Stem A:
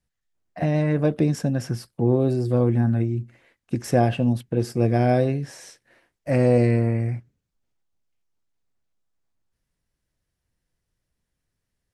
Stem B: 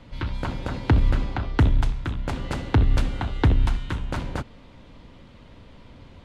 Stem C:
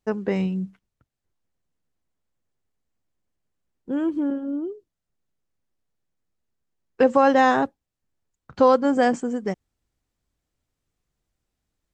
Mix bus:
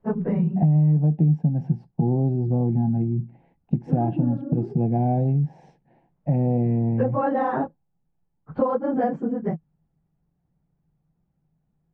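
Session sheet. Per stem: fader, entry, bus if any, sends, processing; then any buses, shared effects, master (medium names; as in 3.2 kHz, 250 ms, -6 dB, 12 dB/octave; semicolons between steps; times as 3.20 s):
+0.5 dB, 0.00 s, no send, FFT filter 110 Hz 0 dB, 150 Hz +10 dB, 580 Hz -4 dB, 820 Hz +11 dB, 1.2 kHz -16 dB, 2.5 kHz -1 dB
-20.0 dB, 0.00 s, no send, compression, threshold -28 dBFS, peak gain reduction 14 dB; full-wave rectifier; auto duck -22 dB, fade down 0.20 s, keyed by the first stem
+1.0 dB, 0.00 s, no send, phase randomisation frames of 50 ms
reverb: none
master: low-pass 1.2 kHz 12 dB/octave; peaking EQ 160 Hz +10.5 dB 0.49 oct; compression 3:1, threshold -21 dBFS, peak gain reduction 14.5 dB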